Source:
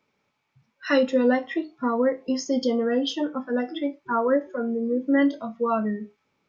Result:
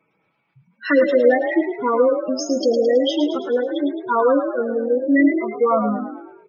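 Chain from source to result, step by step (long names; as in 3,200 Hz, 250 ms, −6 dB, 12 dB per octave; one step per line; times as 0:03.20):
gate on every frequency bin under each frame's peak −15 dB strong
comb filter 6.2 ms, depth 62%
echo with shifted repeats 108 ms, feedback 51%, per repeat +43 Hz, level −8 dB
level +4.5 dB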